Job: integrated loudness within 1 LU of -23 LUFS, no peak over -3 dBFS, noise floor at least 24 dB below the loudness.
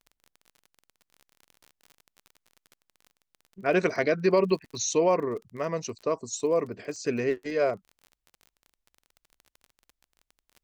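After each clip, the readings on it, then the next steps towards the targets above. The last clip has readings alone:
ticks 31/s; loudness -27.5 LUFS; peak -11.0 dBFS; loudness target -23.0 LUFS
-> de-click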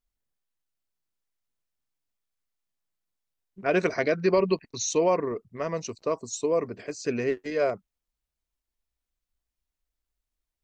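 ticks 0.094/s; loudness -27.5 LUFS; peak -11.0 dBFS; loudness target -23.0 LUFS
-> gain +4.5 dB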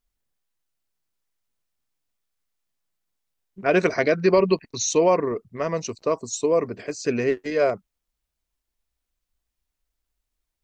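loudness -23.0 LUFS; peak -6.5 dBFS; noise floor -83 dBFS

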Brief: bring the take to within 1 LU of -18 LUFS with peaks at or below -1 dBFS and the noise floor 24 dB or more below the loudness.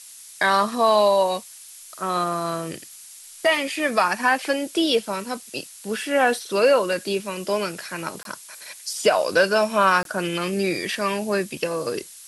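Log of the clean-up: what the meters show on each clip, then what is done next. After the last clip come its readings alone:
dropouts 2; longest dropout 22 ms; noise floor -44 dBFS; noise floor target -46 dBFS; loudness -22.0 LUFS; peak -5.5 dBFS; loudness target -18.0 LUFS
-> interpolate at 8.23/10.03, 22 ms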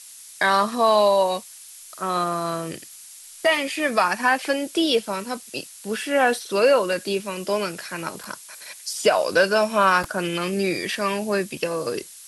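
dropouts 0; noise floor -44 dBFS; noise floor target -46 dBFS
-> denoiser 6 dB, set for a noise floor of -44 dBFS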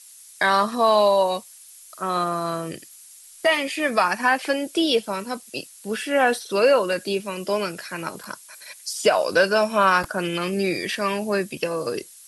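noise floor -47 dBFS; loudness -22.0 LUFS; peak -5.5 dBFS; loudness target -18.0 LUFS
-> gain +4 dB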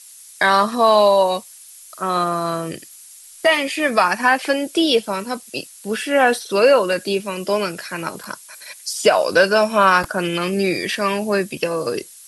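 loudness -18.0 LUFS; peak -1.5 dBFS; noise floor -43 dBFS

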